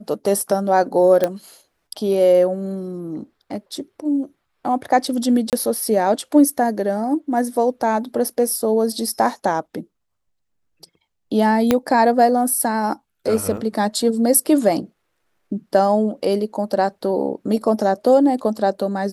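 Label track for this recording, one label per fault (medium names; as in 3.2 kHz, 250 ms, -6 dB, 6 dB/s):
1.240000	1.240000	pop -6 dBFS
5.500000	5.530000	dropout 28 ms
11.710000	11.710000	pop -2 dBFS
13.570000	13.570000	dropout 2.7 ms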